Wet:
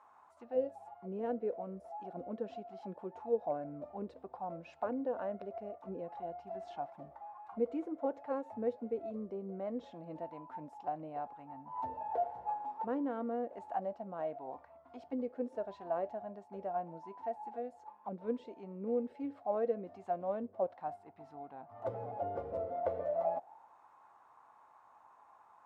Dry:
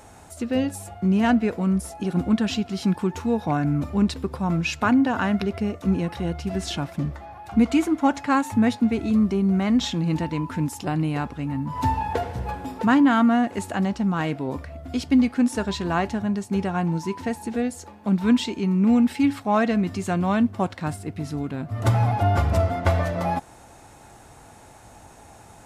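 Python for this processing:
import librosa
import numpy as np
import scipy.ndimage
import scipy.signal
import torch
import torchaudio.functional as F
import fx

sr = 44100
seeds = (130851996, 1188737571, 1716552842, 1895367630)

y = fx.auto_wah(x, sr, base_hz=490.0, top_hz=1100.0, q=7.4, full_db=-17.0, direction='down')
y = y * librosa.db_to_amplitude(-1.0)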